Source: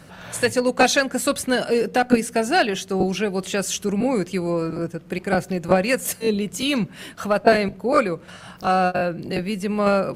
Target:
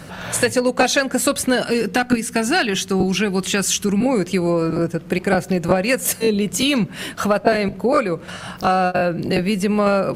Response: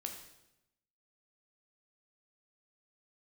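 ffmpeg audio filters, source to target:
-filter_complex "[0:a]asettb=1/sr,asplit=3[link_01][link_02][link_03];[link_01]atrim=end=1.624[link_04];[link_02]atrim=start=1.62:end=4.06,asetpts=PTS-STARTPTS,afade=type=in:duration=0.004:curve=qsin,afade=type=out:start_time=2.436:duration=0.004:curve=qsin,equalizer=frequency=570:width=1.7:gain=-10[link_05];[link_03]atrim=start=4.056[link_06];[link_04][link_05]acrossfade=duration=0.004:curve1=hsin:curve2=qsin[link_07];[link_07][link_06]acrossfade=duration=0.004:curve1=qsin:curve2=hsin,acompressor=threshold=-24dB:ratio=3,volume=8.5dB"

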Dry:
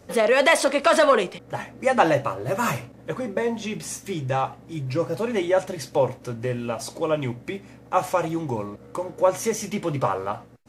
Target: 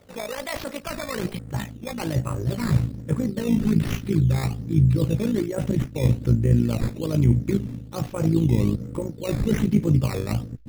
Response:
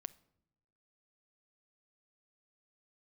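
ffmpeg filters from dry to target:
-af "areverse,acompressor=threshold=-29dB:ratio=6,areverse,tremolo=f=55:d=0.71,acrusher=samples=10:mix=1:aa=0.000001:lfo=1:lforange=10:lforate=1.2,asubboost=boost=11.5:cutoff=230,volume=3.5dB"

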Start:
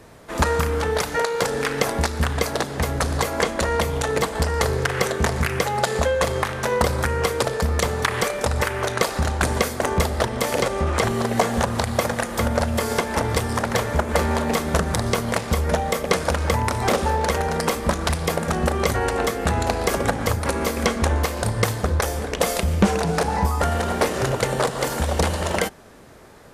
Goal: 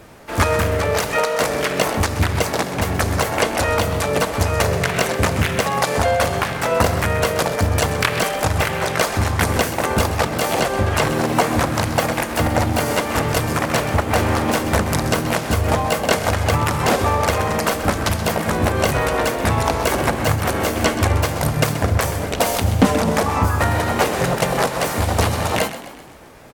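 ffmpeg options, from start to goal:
ffmpeg -i in.wav -filter_complex "[0:a]asplit=2[link_01][link_02];[link_02]asetrate=58866,aresample=44100,atempo=0.749154,volume=0dB[link_03];[link_01][link_03]amix=inputs=2:normalize=0,asplit=6[link_04][link_05][link_06][link_07][link_08][link_09];[link_05]adelay=129,afreqshift=43,volume=-13dB[link_10];[link_06]adelay=258,afreqshift=86,volume=-18.7dB[link_11];[link_07]adelay=387,afreqshift=129,volume=-24.4dB[link_12];[link_08]adelay=516,afreqshift=172,volume=-30dB[link_13];[link_09]adelay=645,afreqshift=215,volume=-35.7dB[link_14];[link_04][link_10][link_11][link_12][link_13][link_14]amix=inputs=6:normalize=0" out.wav

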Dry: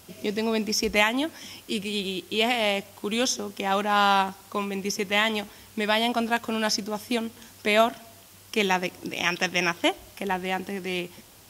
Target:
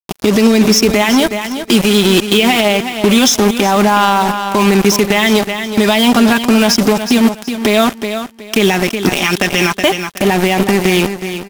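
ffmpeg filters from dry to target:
ffmpeg -i in.wav -af "highpass=frequency=41:poles=1,equalizer=frequency=260:width_type=o:width=0.88:gain=4,aecho=1:1:5:0.59,acontrast=35,acrusher=bits=3:mix=0:aa=0.5,acompressor=threshold=-19dB:ratio=4,aecho=1:1:369|738|1107:0.237|0.0569|0.0137,alimiter=level_in=15.5dB:limit=-1dB:release=50:level=0:latency=1,volume=-1dB" out.wav

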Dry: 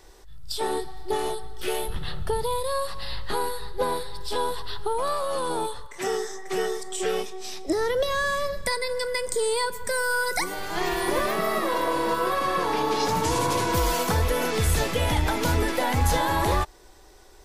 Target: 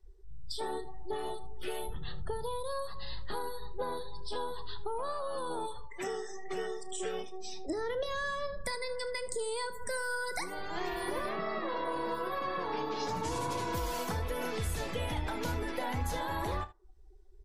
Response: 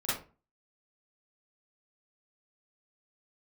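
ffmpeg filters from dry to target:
-filter_complex "[0:a]asettb=1/sr,asplit=3[link_01][link_02][link_03];[link_01]atrim=end=11.294[link_04];[link_02]atrim=start=11.29:end=11.85,asetpts=PTS-STARTPTS,afade=type=in:duration=0.004:curve=qsin,afade=type=out:start_time=0.556:duration=0.004:curve=qsin,acrossover=split=7400[link_05][link_06];[link_06]acompressor=threshold=-57dB:ratio=4:attack=1:release=60[link_07];[link_05][link_07]amix=inputs=2:normalize=0[link_08];[link_03]atrim=start=11.846[link_09];[link_04][link_08]acrossfade=duration=0.004:curve1=hsin:curve2=qsin[link_10];[link_10][link_09]acrossfade=duration=0.004:curve1=qsin:curve2=hsin,afftdn=noise_reduction=29:noise_floor=-40,acompressor=threshold=-41dB:ratio=2,aecho=1:1:33|77:0.178|0.133" -ar 48000 -c:a libvorbis -b:a 96k

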